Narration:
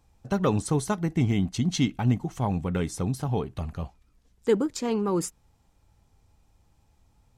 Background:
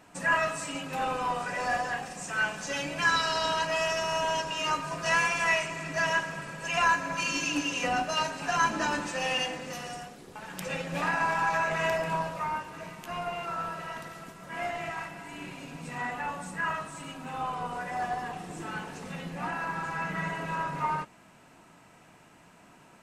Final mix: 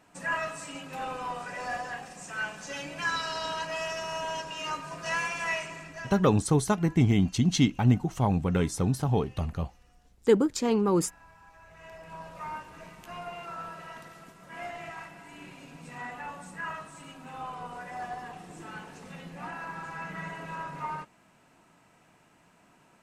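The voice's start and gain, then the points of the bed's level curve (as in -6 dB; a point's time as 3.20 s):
5.80 s, +1.5 dB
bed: 5.75 s -5 dB
6.52 s -28.5 dB
11.56 s -28.5 dB
12.48 s -5.5 dB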